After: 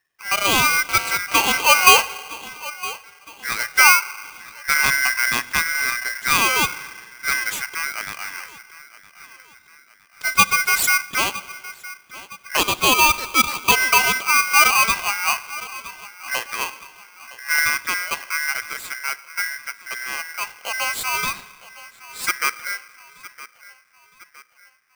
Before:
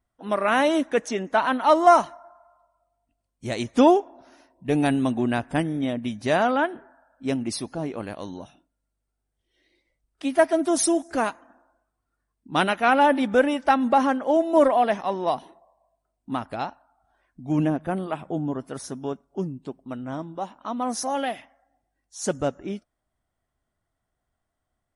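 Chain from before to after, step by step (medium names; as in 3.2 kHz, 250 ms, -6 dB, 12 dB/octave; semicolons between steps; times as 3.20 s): 12.57–13.72 s: steep high-pass 480 Hz 72 dB/octave; filtered feedback delay 963 ms, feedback 47%, low-pass 3.1 kHz, level -17.5 dB; spring tank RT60 1.9 s, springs 38/56 ms, chirp 75 ms, DRR 17.5 dB; 0.89–2.02 s: mobile phone buzz -31 dBFS; polarity switched at an audio rate 1.8 kHz; trim +3 dB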